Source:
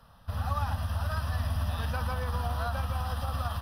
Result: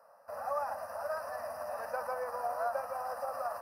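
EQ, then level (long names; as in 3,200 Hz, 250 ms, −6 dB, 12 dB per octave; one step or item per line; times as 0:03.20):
high-pass with resonance 580 Hz, resonance Q 4.9
Butterworth band-reject 3,400 Hz, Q 1.1
−5.0 dB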